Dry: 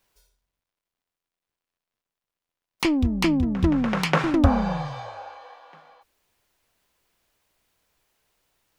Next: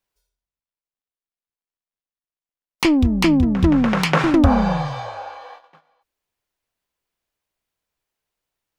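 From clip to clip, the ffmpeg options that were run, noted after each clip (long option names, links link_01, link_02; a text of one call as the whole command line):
ffmpeg -i in.wav -filter_complex "[0:a]asplit=2[link_01][link_02];[link_02]alimiter=limit=-13.5dB:level=0:latency=1:release=81,volume=2.5dB[link_03];[link_01][link_03]amix=inputs=2:normalize=0,agate=range=-18dB:threshold=-39dB:ratio=16:detection=peak,volume=-1dB" out.wav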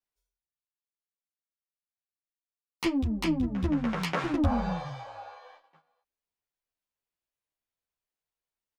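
ffmpeg -i in.wav -filter_complex "[0:a]asplit=2[link_01][link_02];[link_02]adelay=11,afreqshift=1.6[link_03];[link_01][link_03]amix=inputs=2:normalize=1,volume=-9dB" out.wav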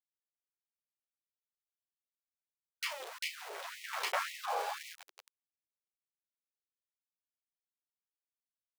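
ffmpeg -i in.wav -filter_complex "[0:a]asplit=2[link_01][link_02];[link_02]adelay=33,volume=-7.5dB[link_03];[link_01][link_03]amix=inputs=2:normalize=0,aeval=exprs='val(0)*gte(abs(val(0)),0.02)':channel_layout=same,afftfilt=real='re*gte(b*sr/1024,340*pow(1900/340,0.5+0.5*sin(2*PI*1.9*pts/sr)))':imag='im*gte(b*sr/1024,340*pow(1900/340,0.5+0.5*sin(2*PI*1.9*pts/sr)))':win_size=1024:overlap=0.75,volume=-2.5dB" out.wav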